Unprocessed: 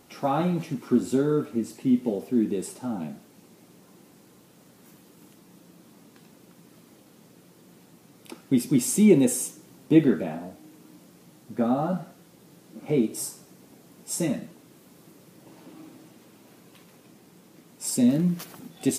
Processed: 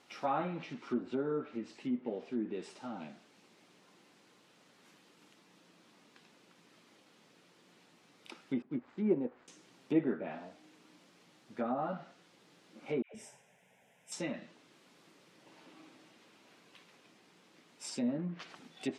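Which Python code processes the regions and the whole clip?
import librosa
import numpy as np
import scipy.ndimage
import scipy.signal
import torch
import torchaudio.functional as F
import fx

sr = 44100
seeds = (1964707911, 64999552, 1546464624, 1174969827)

y = fx.chain(x, sr, fx.median_filter(points=15),
    fx.high_shelf(hz=2300.0, db=-10.0),
    fx.upward_expand(threshold_db=-35.0, expansion=1.5), at=(8.62, 9.48))
y = fx.chain(y, sr, fx.fixed_phaser(hz=1200.0, stages=6),
    fx.dispersion(late='lows', ms=124.0, hz=840.0), at=(13.02, 14.12))
y = fx.env_lowpass_down(y, sr, base_hz=1200.0, full_db=-18.5)
y = scipy.signal.sosfilt(scipy.signal.butter(2, 3100.0, 'lowpass', fs=sr, output='sos'), y)
y = fx.tilt_eq(y, sr, slope=4.0)
y = y * librosa.db_to_amplitude(-5.5)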